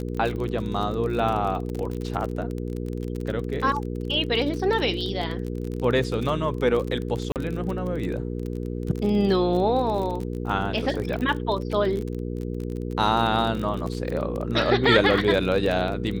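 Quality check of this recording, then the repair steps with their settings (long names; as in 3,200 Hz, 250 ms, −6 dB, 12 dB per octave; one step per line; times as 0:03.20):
surface crackle 35 per second −28 dBFS
mains hum 60 Hz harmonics 8 −30 dBFS
0:07.32–0:07.36: drop-out 38 ms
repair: click removal
hum removal 60 Hz, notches 8
repair the gap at 0:07.32, 38 ms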